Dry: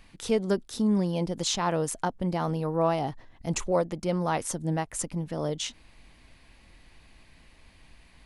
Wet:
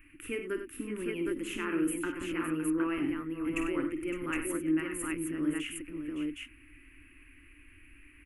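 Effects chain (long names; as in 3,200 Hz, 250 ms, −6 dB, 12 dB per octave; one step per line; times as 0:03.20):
drawn EQ curve 110 Hz 0 dB, 200 Hz −19 dB, 290 Hz +14 dB, 450 Hz −9 dB, 740 Hz −26 dB, 1,300 Hz +2 dB, 2,700 Hz +8 dB, 3,800 Hz −26 dB, 5,800 Hz −24 dB, 11,000 Hz +6 dB
on a send: multi-tap delay 48/57/95/562/764 ms −11/−11.5/−10/−10.5/−3 dB
on the sum: level −5 dB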